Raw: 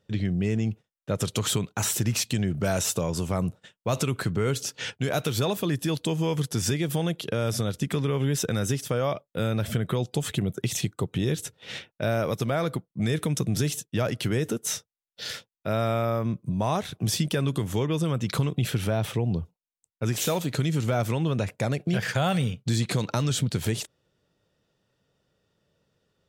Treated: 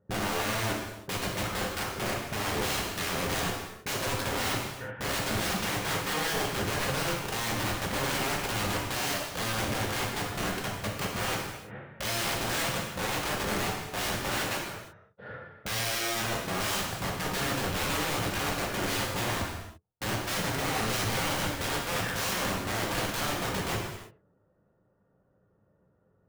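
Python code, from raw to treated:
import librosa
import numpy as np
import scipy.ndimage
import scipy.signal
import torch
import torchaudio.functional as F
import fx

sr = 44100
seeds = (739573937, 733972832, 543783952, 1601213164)

y = scipy.signal.sosfilt(scipy.signal.butter(4, 1400.0, 'lowpass', fs=sr, output='sos'), x)
y = (np.mod(10.0 ** (29.0 / 20.0) * y + 1.0, 2.0) - 1.0) / 10.0 ** (29.0 / 20.0)
y = fx.rev_gated(y, sr, seeds[0], gate_ms=370, shape='falling', drr_db=-2.0)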